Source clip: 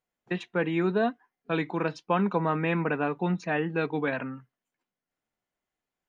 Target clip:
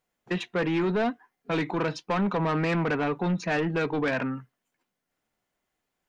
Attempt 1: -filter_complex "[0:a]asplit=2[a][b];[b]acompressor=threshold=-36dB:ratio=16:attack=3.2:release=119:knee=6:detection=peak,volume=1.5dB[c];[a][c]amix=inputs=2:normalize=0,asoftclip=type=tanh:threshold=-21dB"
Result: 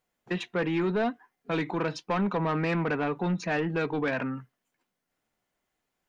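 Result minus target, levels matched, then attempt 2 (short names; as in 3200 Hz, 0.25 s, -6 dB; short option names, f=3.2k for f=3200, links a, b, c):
compressor: peak gain reduction +11 dB
-filter_complex "[0:a]asplit=2[a][b];[b]acompressor=threshold=-24.5dB:ratio=16:attack=3.2:release=119:knee=6:detection=peak,volume=1.5dB[c];[a][c]amix=inputs=2:normalize=0,asoftclip=type=tanh:threshold=-21dB"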